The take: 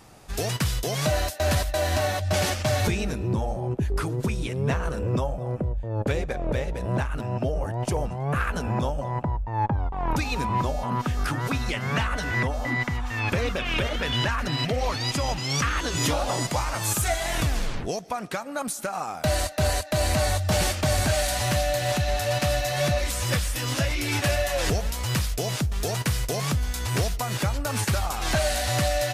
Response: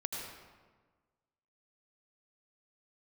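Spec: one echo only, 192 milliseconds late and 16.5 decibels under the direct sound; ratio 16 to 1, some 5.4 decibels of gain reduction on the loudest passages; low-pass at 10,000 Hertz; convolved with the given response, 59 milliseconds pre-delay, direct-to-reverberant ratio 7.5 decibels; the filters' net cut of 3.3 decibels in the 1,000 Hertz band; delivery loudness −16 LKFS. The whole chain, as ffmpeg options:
-filter_complex "[0:a]lowpass=10000,equalizer=frequency=1000:width_type=o:gain=-4.5,acompressor=threshold=-25dB:ratio=16,aecho=1:1:192:0.15,asplit=2[link_01][link_02];[1:a]atrim=start_sample=2205,adelay=59[link_03];[link_02][link_03]afir=irnorm=-1:irlink=0,volume=-9.5dB[link_04];[link_01][link_04]amix=inputs=2:normalize=0,volume=13.5dB"

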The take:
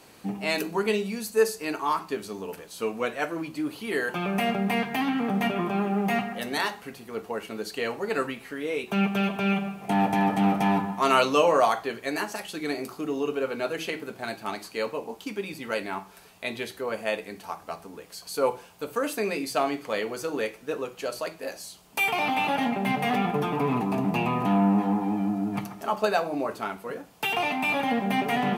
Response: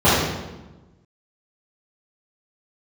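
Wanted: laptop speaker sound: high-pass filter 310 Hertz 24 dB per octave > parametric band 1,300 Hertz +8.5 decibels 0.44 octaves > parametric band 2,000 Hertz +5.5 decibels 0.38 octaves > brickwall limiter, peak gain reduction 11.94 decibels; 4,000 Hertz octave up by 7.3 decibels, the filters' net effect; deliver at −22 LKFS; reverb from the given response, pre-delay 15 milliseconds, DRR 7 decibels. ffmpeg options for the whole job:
-filter_complex "[0:a]equalizer=frequency=4000:width_type=o:gain=9,asplit=2[link_01][link_02];[1:a]atrim=start_sample=2205,adelay=15[link_03];[link_02][link_03]afir=irnorm=-1:irlink=0,volume=-33dB[link_04];[link_01][link_04]amix=inputs=2:normalize=0,highpass=frequency=310:width=0.5412,highpass=frequency=310:width=1.3066,equalizer=frequency=1300:width_type=o:width=0.44:gain=8.5,equalizer=frequency=2000:width_type=o:width=0.38:gain=5.5,volume=4dB,alimiter=limit=-10.5dB:level=0:latency=1"

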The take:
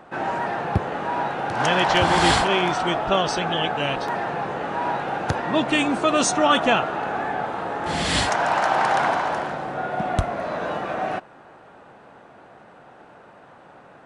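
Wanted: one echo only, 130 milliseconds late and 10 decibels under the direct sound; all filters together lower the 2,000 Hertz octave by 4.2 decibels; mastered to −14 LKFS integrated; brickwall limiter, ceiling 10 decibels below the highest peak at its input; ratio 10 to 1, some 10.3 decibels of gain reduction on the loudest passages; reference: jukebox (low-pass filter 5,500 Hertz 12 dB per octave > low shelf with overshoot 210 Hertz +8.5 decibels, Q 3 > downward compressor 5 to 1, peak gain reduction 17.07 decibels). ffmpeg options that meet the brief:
ffmpeg -i in.wav -af "equalizer=frequency=2000:width_type=o:gain=-5.5,acompressor=threshold=-25dB:ratio=10,alimiter=limit=-23dB:level=0:latency=1,lowpass=5500,lowshelf=frequency=210:width_type=q:width=3:gain=8.5,aecho=1:1:130:0.316,acompressor=threshold=-40dB:ratio=5,volume=28.5dB" out.wav

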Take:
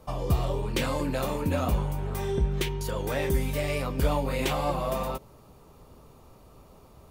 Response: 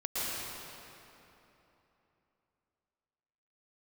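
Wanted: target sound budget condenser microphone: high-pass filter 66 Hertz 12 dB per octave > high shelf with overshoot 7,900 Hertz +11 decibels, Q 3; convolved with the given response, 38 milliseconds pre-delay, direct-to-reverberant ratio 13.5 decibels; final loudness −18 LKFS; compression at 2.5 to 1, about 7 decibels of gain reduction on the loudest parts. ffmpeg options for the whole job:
-filter_complex "[0:a]acompressor=threshold=-30dB:ratio=2.5,asplit=2[link_01][link_02];[1:a]atrim=start_sample=2205,adelay=38[link_03];[link_02][link_03]afir=irnorm=-1:irlink=0,volume=-21dB[link_04];[link_01][link_04]amix=inputs=2:normalize=0,highpass=66,highshelf=frequency=7900:width_type=q:width=3:gain=11,volume=13.5dB"

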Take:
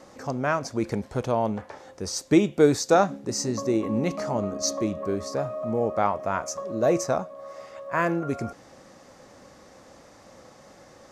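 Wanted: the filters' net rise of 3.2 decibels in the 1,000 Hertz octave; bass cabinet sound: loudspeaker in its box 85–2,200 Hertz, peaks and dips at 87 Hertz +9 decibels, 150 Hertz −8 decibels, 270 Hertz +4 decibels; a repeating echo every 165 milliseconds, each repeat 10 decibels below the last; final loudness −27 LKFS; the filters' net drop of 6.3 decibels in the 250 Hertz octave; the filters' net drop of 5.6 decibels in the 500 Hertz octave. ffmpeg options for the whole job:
ffmpeg -i in.wav -af "highpass=frequency=85:width=0.5412,highpass=frequency=85:width=1.3066,equalizer=frequency=87:width_type=q:width=4:gain=9,equalizer=frequency=150:width_type=q:width=4:gain=-8,equalizer=frequency=270:width_type=q:width=4:gain=4,lowpass=frequency=2200:width=0.5412,lowpass=frequency=2200:width=1.3066,equalizer=frequency=250:width_type=o:gain=-7.5,equalizer=frequency=500:width_type=o:gain=-8,equalizer=frequency=1000:width_type=o:gain=7.5,aecho=1:1:165|330|495|660:0.316|0.101|0.0324|0.0104,volume=1dB" out.wav

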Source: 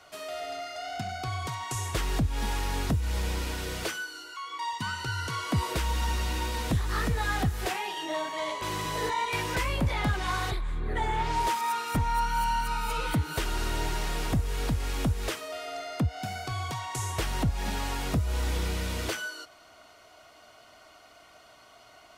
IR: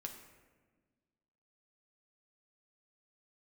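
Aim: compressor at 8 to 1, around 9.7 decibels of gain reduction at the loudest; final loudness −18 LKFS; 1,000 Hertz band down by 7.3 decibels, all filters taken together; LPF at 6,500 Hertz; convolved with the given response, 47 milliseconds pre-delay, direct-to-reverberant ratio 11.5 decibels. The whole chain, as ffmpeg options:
-filter_complex "[0:a]lowpass=6500,equalizer=frequency=1000:width_type=o:gain=-8.5,acompressor=threshold=-32dB:ratio=8,asplit=2[link_01][link_02];[1:a]atrim=start_sample=2205,adelay=47[link_03];[link_02][link_03]afir=irnorm=-1:irlink=0,volume=-8.5dB[link_04];[link_01][link_04]amix=inputs=2:normalize=0,volume=19dB"

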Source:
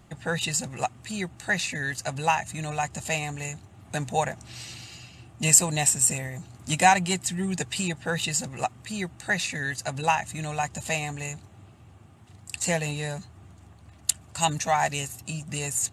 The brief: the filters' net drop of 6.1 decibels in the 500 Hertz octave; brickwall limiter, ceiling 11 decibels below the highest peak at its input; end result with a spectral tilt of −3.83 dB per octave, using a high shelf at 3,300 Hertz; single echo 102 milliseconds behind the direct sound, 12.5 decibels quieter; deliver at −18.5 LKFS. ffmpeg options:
ffmpeg -i in.wav -af "equalizer=frequency=500:width_type=o:gain=-8,highshelf=frequency=3300:gain=-8,alimiter=limit=-19.5dB:level=0:latency=1,aecho=1:1:102:0.237,volume=14dB" out.wav

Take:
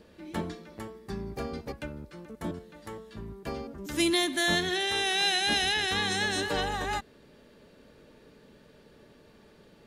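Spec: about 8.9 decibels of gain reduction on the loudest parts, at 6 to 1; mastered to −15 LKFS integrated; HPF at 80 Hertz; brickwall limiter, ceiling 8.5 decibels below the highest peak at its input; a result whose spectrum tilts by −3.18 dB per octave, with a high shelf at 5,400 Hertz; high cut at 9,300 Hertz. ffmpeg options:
ffmpeg -i in.wav -af "highpass=80,lowpass=9300,highshelf=frequency=5400:gain=8.5,acompressor=threshold=-30dB:ratio=6,volume=23dB,alimiter=limit=-5dB:level=0:latency=1" out.wav

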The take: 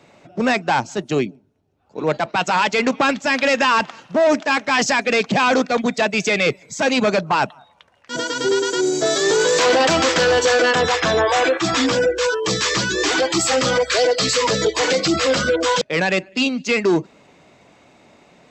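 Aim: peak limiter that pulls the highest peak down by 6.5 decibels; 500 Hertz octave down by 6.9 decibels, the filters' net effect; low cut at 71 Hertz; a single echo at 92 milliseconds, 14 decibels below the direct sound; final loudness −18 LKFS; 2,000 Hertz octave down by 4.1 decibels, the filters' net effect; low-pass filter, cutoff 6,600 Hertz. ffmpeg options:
ffmpeg -i in.wav -af "highpass=71,lowpass=6600,equalizer=frequency=500:width_type=o:gain=-8,equalizer=frequency=2000:width_type=o:gain=-5,alimiter=limit=-16dB:level=0:latency=1,aecho=1:1:92:0.2,volume=6.5dB" out.wav

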